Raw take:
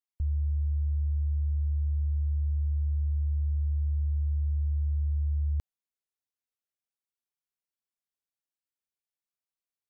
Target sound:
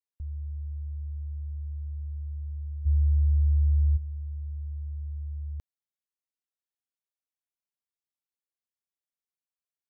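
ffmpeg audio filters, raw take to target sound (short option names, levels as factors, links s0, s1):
-filter_complex "[0:a]asplit=3[s0][s1][s2];[s0]afade=t=out:st=2.85:d=0.02[s3];[s1]lowshelf=f=130:t=q:w=3:g=9,afade=t=in:st=2.85:d=0.02,afade=t=out:st=3.96:d=0.02[s4];[s2]afade=t=in:st=3.96:d=0.02[s5];[s3][s4][s5]amix=inputs=3:normalize=0,volume=0.447"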